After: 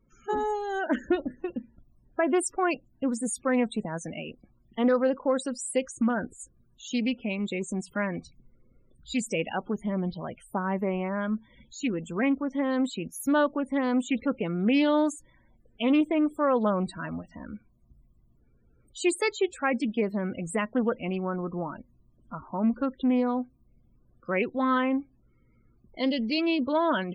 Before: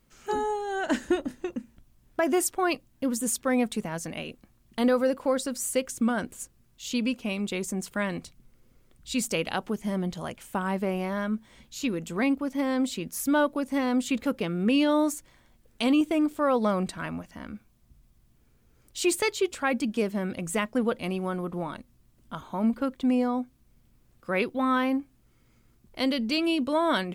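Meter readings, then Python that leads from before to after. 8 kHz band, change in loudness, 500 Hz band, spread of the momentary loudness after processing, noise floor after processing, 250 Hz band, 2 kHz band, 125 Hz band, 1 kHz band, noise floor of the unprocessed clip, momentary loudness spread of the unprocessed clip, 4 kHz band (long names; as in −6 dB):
−4.5 dB, −0.5 dB, 0.0 dB, 13 LU, −64 dBFS, 0.0 dB, −1.0 dB, 0.0 dB, 0.0 dB, −63 dBFS, 13 LU, −3.5 dB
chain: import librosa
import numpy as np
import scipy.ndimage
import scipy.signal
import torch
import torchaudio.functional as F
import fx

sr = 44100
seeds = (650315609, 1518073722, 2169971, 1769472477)

y = fx.spec_topn(x, sr, count=32)
y = fx.doppler_dist(y, sr, depth_ms=0.13)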